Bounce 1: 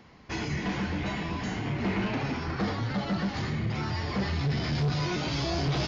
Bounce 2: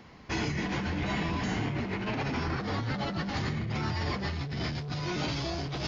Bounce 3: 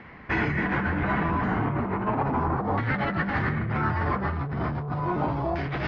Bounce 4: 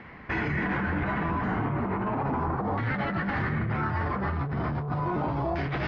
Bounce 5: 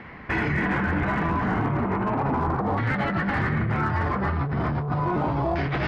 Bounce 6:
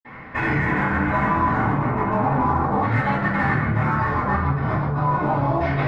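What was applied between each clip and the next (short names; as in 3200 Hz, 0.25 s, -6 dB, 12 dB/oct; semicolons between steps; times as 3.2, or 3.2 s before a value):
negative-ratio compressor -32 dBFS, ratio -1
LFO low-pass saw down 0.36 Hz 900–2000 Hz; gain +4.5 dB
limiter -20.5 dBFS, peak gain reduction 6 dB
hard clip -21.5 dBFS, distortion -34 dB; gain +4 dB
reverb RT60 0.60 s, pre-delay 46 ms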